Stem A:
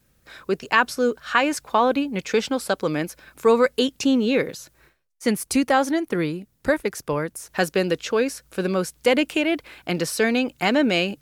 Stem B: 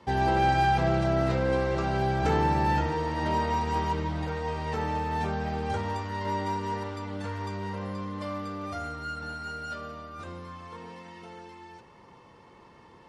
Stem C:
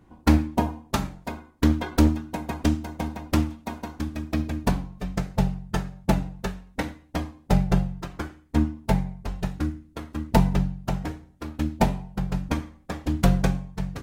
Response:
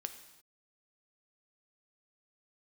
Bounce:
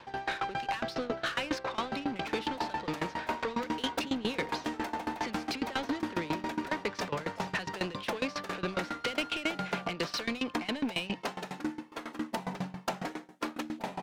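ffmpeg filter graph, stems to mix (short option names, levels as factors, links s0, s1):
-filter_complex "[0:a]lowpass=f=4000:w=0.5412,lowpass=f=4000:w=1.3066,acrossover=split=230|3000[s0][s1][s2];[s1]acompressor=threshold=0.0251:ratio=6[s3];[s0][s3][s2]amix=inputs=3:normalize=0,volume=1.26[s4];[1:a]acompressor=threshold=0.0251:ratio=2.5,volume=0.299[s5];[2:a]highpass=f=190:w=0.5412,highpass=f=190:w=1.3066,acompressor=threshold=0.0447:ratio=6,adelay=2000,volume=1[s6];[s4][s6]amix=inputs=2:normalize=0,alimiter=level_in=1.41:limit=0.0631:level=0:latency=1:release=171,volume=0.708,volume=1[s7];[s5][s7]amix=inputs=2:normalize=0,asplit=2[s8][s9];[s9]highpass=f=720:p=1,volume=15.8,asoftclip=type=tanh:threshold=0.126[s10];[s8][s10]amix=inputs=2:normalize=0,lowpass=f=4900:p=1,volume=0.501,aeval=exprs='val(0)*pow(10,-20*if(lt(mod(7.3*n/s,1),2*abs(7.3)/1000),1-mod(7.3*n/s,1)/(2*abs(7.3)/1000),(mod(7.3*n/s,1)-2*abs(7.3)/1000)/(1-2*abs(7.3)/1000))/20)':c=same"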